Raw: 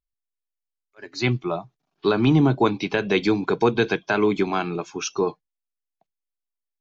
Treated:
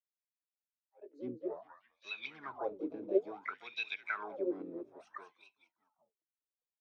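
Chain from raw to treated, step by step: frequency-shifting echo 200 ms, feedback 42%, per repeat -58 Hz, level -12.5 dB; wah-wah 0.59 Hz 290–2600 Hz, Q 18; harmony voices +7 st -7 dB; trim -2 dB

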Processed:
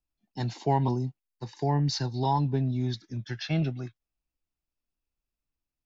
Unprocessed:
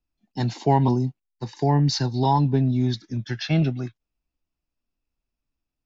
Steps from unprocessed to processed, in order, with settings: peaking EQ 240 Hz -3 dB 0.77 oct; trim -5.5 dB

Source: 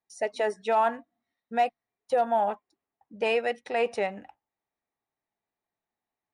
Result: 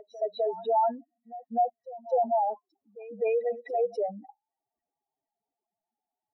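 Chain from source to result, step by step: spectral contrast enhancement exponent 3.9; level-controlled noise filter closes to 1.7 kHz, open at -26.5 dBFS; pre-echo 254 ms -17 dB

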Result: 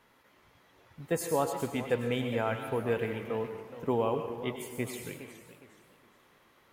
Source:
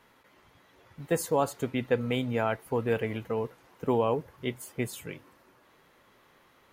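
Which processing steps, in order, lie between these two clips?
on a send at -7 dB: tilt EQ +2 dB/octave + reverberation RT60 1.2 s, pre-delay 91 ms; on the sum: modulated delay 417 ms, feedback 33%, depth 174 cents, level -13.5 dB; trim -3 dB

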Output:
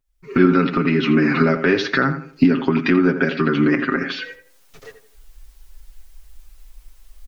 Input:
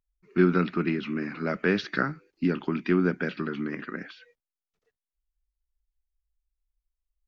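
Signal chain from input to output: recorder AGC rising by 46 dB/s; comb 7.4 ms, depth 78%; tape echo 84 ms, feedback 36%, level -8.5 dB, low-pass 1.7 kHz; trim +5 dB

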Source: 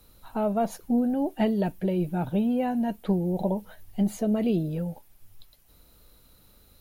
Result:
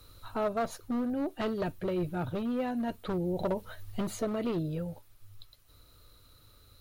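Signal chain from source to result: overload inside the chain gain 21 dB; graphic EQ with 31 bands 100 Hz +10 dB, 200 Hz -11 dB, 800 Hz -6 dB, 1.25 kHz +7 dB, 4 kHz +5 dB, 12.5 kHz -7 dB; gain riding within 5 dB 0.5 s; trim -2 dB

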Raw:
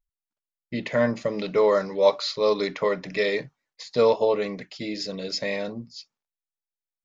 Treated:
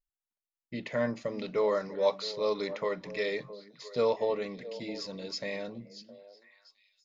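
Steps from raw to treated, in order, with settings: repeats whose band climbs or falls 332 ms, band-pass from 210 Hz, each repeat 1.4 oct, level -11 dB; trim -8 dB

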